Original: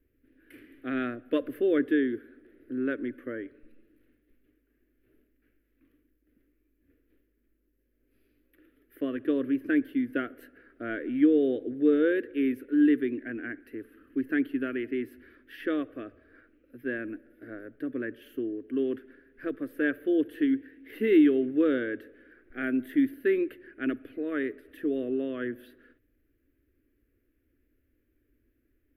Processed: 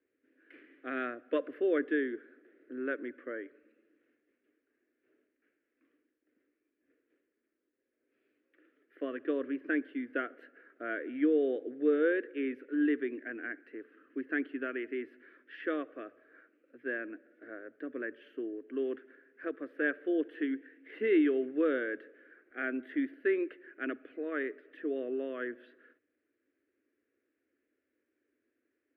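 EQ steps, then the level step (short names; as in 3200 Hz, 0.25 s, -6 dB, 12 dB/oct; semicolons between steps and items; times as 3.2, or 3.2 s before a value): BPF 440–2400 Hz; 0.0 dB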